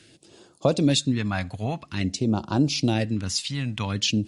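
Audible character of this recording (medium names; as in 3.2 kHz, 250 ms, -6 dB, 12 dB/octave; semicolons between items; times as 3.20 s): phasing stages 2, 0.49 Hz, lowest notch 360–2000 Hz; MP3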